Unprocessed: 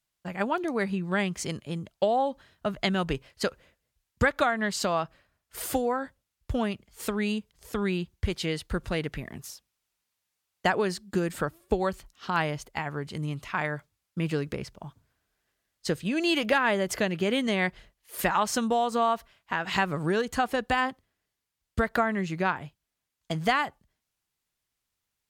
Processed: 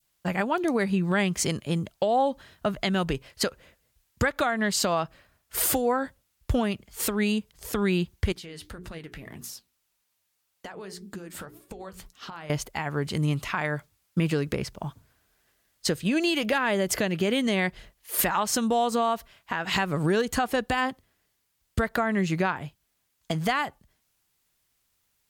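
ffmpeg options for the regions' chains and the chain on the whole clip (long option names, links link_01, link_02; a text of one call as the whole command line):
ffmpeg -i in.wav -filter_complex "[0:a]asettb=1/sr,asplit=3[link_01][link_02][link_03];[link_01]atrim=end=8.324[link_04];[link_02]atrim=start=8.32:end=12.5,asetpts=PTS-STARTPTS,afade=type=in:duration=0.004:curve=qsin,afade=type=out:start_time=4.176:duration=0.004:curve=qsin,bandreject=frequency=60:width_type=h:width=6,bandreject=frequency=120:width_type=h:width=6,bandreject=frequency=180:width_type=h:width=6,bandreject=frequency=240:width_type=h:width=6,bandreject=frequency=300:width_type=h:width=6,bandreject=frequency=360:width_type=h:width=6,bandreject=frequency=420:width_type=h:width=6,acompressor=threshold=-40dB:ratio=10:attack=3.2:release=140:knee=1:detection=peak,flanger=delay=3:depth=9.6:regen=64:speed=1.8:shape=triangular[link_05];[link_03]atrim=start=12.496[link_06];[link_04][link_05]acrossfade=duration=0.004:curve1=hsin:curve2=qsin[link_07];[link_07][link_06]acrossfade=duration=0.004:curve1=qsin:curve2=hsin,adynamicequalizer=threshold=0.0158:dfrequency=1200:dqfactor=0.75:tfrequency=1200:tqfactor=0.75:attack=5:release=100:ratio=0.375:range=2:mode=cutabove:tftype=bell,alimiter=limit=-23dB:level=0:latency=1:release=333,highshelf=frequency=11000:gain=6.5,volume=8dB" out.wav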